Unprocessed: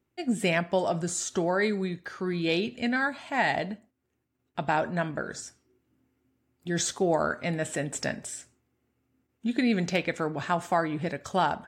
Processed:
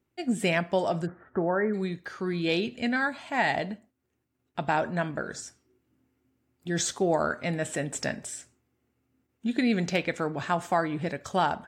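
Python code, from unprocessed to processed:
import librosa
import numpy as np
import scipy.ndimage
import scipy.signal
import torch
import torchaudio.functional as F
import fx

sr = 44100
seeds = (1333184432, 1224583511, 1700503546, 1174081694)

y = fx.steep_lowpass(x, sr, hz=1800.0, slope=48, at=(1.05, 1.73), fade=0.02)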